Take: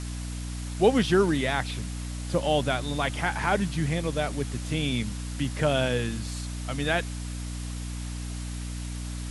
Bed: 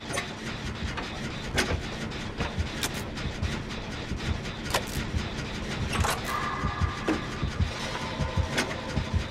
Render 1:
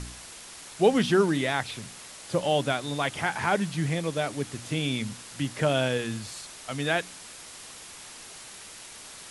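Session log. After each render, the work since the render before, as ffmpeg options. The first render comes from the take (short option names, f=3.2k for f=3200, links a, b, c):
-af "bandreject=f=60:t=h:w=4,bandreject=f=120:t=h:w=4,bandreject=f=180:t=h:w=4,bandreject=f=240:t=h:w=4,bandreject=f=300:t=h:w=4"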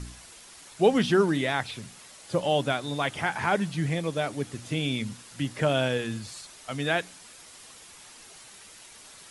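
-af "afftdn=nr=6:nf=-45"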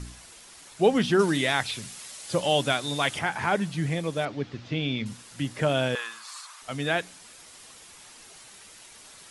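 -filter_complex "[0:a]asettb=1/sr,asplit=3[a][b][c];[a]atrim=end=1.194[d];[b]atrim=start=1.19:end=3.19,asetpts=PTS-STARTPTS,afade=t=in:d=0.004:c=qsin,afade=t=out:st=1.996:d=0.004:c=qsin,highshelf=f=2.2k:g=8.5[e];[c]atrim=start=3.186[f];[d][e]acrossfade=d=0.004:c1=hsin:c2=qsin[g];[g][f]acrossfade=d=0.004:c1=qsin:c2=hsin,asettb=1/sr,asplit=3[h][i][j];[h]atrim=end=4.254[k];[i]atrim=start=4.25:end=5.06,asetpts=PTS-STARTPTS,afade=t=in:d=0.004:c=qsin,afade=t=out:st=0.806:d=0.004:c=qsin,lowpass=f=4.8k:w=0.5412,lowpass=f=4.8k:w=1.3066[l];[j]atrim=start=5.056[m];[k][l]acrossfade=d=0.004:c1=hsin:c2=qsin[n];[n][m]acrossfade=d=0.004:c1=qsin:c2=hsin,asettb=1/sr,asplit=3[o][p][q];[o]atrim=end=5.954[r];[p]atrim=start=5.95:end=6.62,asetpts=PTS-STARTPTS,afade=t=in:d=0.004:c=qsin,afade=t=out:st=0.666:d=0.004:c=qsin,highpass=f=1.1k:t=q:w=4.4[s];[q]atrim=start=6.616[t];[r][s]acrossfade=d=0.004:c1=hsin:c2=qsin[u];[u][t]acrossfade=d=0.004:c1=qsin:c2=hsin"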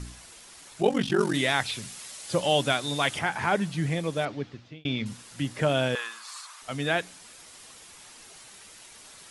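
-filter_complex "[0:a]asettb=1/sr,asplit=3[a][b][c];[a]atrim=end=0.814[d];[b]atrim=start=0.81:end=1.35,asetpts=PTS-STARTPTS,afade=t=in:d=0.004:c=qsin,afade=t=out:st=0.536:d=0.004:c=qsin,aeval=exprs='val(0)*sin(2*PI*23*n/s)':c=same[e];[c]atrim=start=1.346[f];[d][e]acrossfade=d=0.004:c1=hsin:c2=qsin[g];[g][f]acrossfade=d=0.004:c1=qsin:c2=hsin,asettb=1/sr,asplit=3[h][i][j];[h]atrim=end=6.084[k];[i]atrim=start=6.08:end=6.56,asetpts=PTS-STARTPTS,afade=t=in:d=0.004:c=qsin,afade=t=out:st=0.476:d=0.004:c=qsin,highpass=220[l];[j]atrim=start=6.556[m];[k][l]acrossfade=d=0.004:c1=hsin:c2=qsin[n];[n][m]acrossfade=d=0.004:c1=qsin:c2=hsin,asplit=2[o][p];[o]atrim=end=4.85,asetpts=PTS-STARTPTS,afade=t=out:st=4.28:d=0.57[q];[p]atrim=start=4.85,asetpts=PTS-STARTPTS,afade=t=in:d=0.004:c=hsin[r];[q][r]concat=n=2:v=0:a=1"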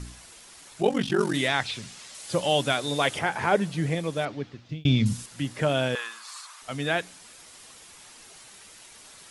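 -filter_complex "[0:a]asettb=1/sr,asplit=3[a][b][c];[a]atrim=end=1.484[d];[b]atrim=start=1.48:end=2.15,asetpts=PTS-STARTPTS,afade=t=in:d=0.004:c=qsin,afade=t=out:st=0.666:d=0.004:c=qsin,lowpass=7.1k[e];[c]atrim=start=2.146[f];[d][e]acrossfade=d=0.004:c1=hsin:c2=qsin[g];[g][f]acrossfade=d=0.004:c1=qsin:c2=hsin,asettb=1/sr,asplit=3[h][i][j];[h]atrim=end=2.774[k];[i]atrim=start=2.77:end=3.95,asetpts=PTS-STARTPTS,afade=t=in:d=0.004:c=qsin,afade=t=out:st=1.176:d=0.004:c=qsin,equalizer=f=480:w=1.5:g=6.5[l];[j]atrim=start=3.946[m];[k][l]acrossfade=d=0.004:c1=hsin:c2=qsin[n];[n][m]acrossfade=d=0.004:c1=qsin:c2=hsin,asettb=1/sr,asplit=3[o][p][q];[o]atrim=end=4.694[r];[p]atrim=start=4.69:end=5.26,asetpts=PTS-STARTPTS,afade=t=in:d=0.004:c=qsin,afade=t=out:st=0.566:d=0.004:c=qsin,bass=f=250:g=14,treble=f=4k:g=10[s];[q]atrim=start=5.256[t];[r][s]acrossfade=d=0.004:c1=hsin:c2=qsin[u];[u][t]acrossfade=d=0.004:c1=qsin:c2=hsin"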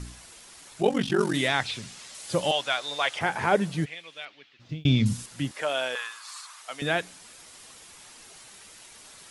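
-filter_complex "[0:a]asettb=1/sr,asplit=3[a][b][c];[a]atrim=end=2.514[d];[b]atrim=start=2.51:end=3.21,asetpts=PTS-STARTPTS,afade=t=in:d=0.004:c=qsin,afade=t=out:st=0.696:d=0.004:c=qsin,acrossover=split=600 7000:gain=0.1 1 0.224[e][f][g];[e][f][g]amix=inputs=3:normalize=0[h];[c]atrim=start=3.206[i];[d][h]acrossfade=d=0.004:c1=hsin:c2=qsin[j];[j][i]acrossfade=d=0.004:c1=qsin:c2=hsin,asplit=3[k][l][m];[k]afade=t=out:st=3.84:d=0.02[n];[l]bandpass=f=2.8k:t=q:w=1.9,afade=t=in:st=3.84:d=0.02,afade=t=out:st=4.59:d=0.02[o];[m]afade=t=in:st=4.59:d=0.02[p];[n][o][p]amix=inputs=3:normalize=0,asettb=1/sr,asplit=3[q][r][s];[q]atrim=end=5.514[t];[r]atrim=start=5.51:end=6.82,asetpts=PTS-STARTPTS,afade=t=in:d=0.004:c=qsin,afade=t=out:st=1.306:d=0.004:c=qsin,highpass=620[u];[s]atrim=start=6.816[v];[t][u]acrossfade=d=0.004:c1=hsin:c2=qsin[w];[w][v]acrossfade=d=0.004:c1=qsin:c2=hsin"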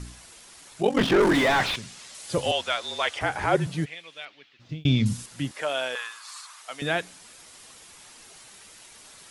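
-filter_complex "[0:a]asettb=1/sr,asplit=3[a][b][c];[a]atrim=end=0.974[d];[b]atrim=start=0.97:end=1.76,asetpts=PTS-STARTPTS,afade=t=in:d=0.004:c=qsin,afade=t=out:st=0.786:d=0.004:c=qsin,asplit=2[e][f];[f]highpass=f=720:p=1,volume=32dB,asoftclip=type=tanh:threshold=-10dB[g];[e][g]amix=inputs=2:normalize=0,lowpass=f=1k:p=1,volume=-6dB[h];[c]atrim=start=1.756[i];[d][h]acrossfade=d=0.004:c1=hsin:c2=qsin[j];[j][i]acrossfade=d=0.004:c1=qsin:c2=hsin,asettb=1/sr,asplit=3[k][l][m];[k]atrim=end=2.374[n];[l]atrim=start=2.37:end=3.67,asetpts=PTS-STARTPTS,afade=t=in:d=0.004:c=qsin,afade=t=out:st=1.296:d=0.004:c=qsin,afreqshift=-44[o];[m]atrim=start=3.666[p];[n][o]acrossfade=d=0.004:c1=hsin:c2=qsin[q];[q][p]acrossfade=d=0.004:c1=qsin:c2=hsin"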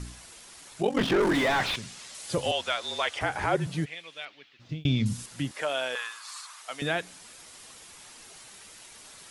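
-af "acompressor=threshold=-28dB:ratio=1.5"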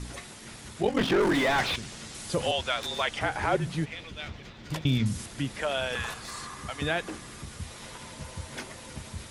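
-filter_complex "[1:a]volume=-12dB[a];[0:a][a]amix=inputs=2:normalize=0"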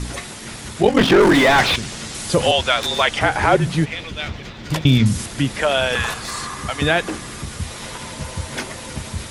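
-af "volume=11.5dB,alimiter=limit=-3dB:level=0:latency=1"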